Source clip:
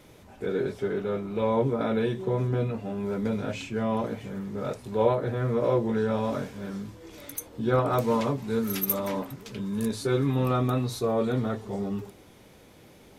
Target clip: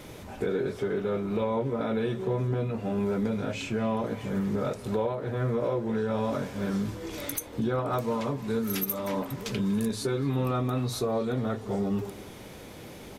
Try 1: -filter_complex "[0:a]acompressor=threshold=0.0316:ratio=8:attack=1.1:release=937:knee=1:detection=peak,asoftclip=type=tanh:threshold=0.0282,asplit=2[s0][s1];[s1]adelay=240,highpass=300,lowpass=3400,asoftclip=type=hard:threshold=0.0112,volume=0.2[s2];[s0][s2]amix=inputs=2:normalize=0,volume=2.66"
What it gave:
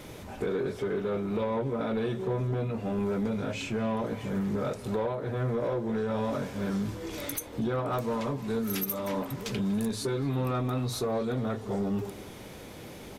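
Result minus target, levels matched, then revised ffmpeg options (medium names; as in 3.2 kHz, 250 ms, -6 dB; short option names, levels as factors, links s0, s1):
saturation: distortion +15 dB
-filter_complex "[0:a]acompressor=threshold=0.0316:ratio=8:attack=1.1:release=937:knee=1:detection=peak,asoftclip=type=tanh:threshold=0.0794,asplit=2[s0][s1];[s1]adelay=240,highpass=300,lowpass=3400,asoftclip=type=hard:threshold=0.0112,volume=0.2[s2];[s0][s2]amix=inputs=2:normalize=0,volume=2.66"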